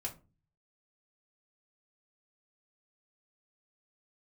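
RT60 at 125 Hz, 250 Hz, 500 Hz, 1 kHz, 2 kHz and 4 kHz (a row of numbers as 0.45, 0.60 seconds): 0.75, 0.55, 0.35, 0.30, 0.25, 0.20 seconds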